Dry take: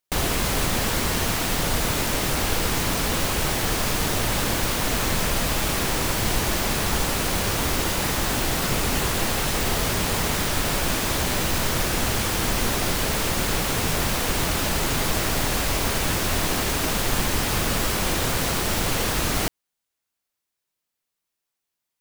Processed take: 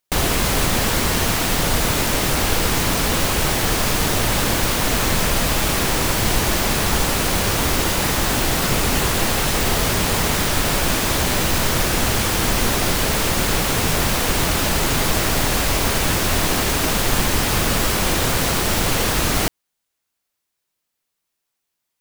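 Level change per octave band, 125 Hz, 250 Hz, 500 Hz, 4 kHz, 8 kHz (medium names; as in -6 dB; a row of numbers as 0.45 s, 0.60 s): +4.5 dB, +4.5 dB, +4.5 dB, +4.5 dB, +4.5 dB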